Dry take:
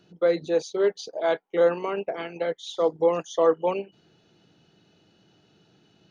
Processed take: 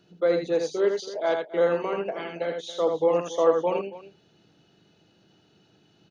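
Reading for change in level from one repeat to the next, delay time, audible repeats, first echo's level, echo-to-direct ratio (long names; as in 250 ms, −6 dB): repeats not evenly spaced, 81 ms, 2, −5.0 dB, −4.5 dB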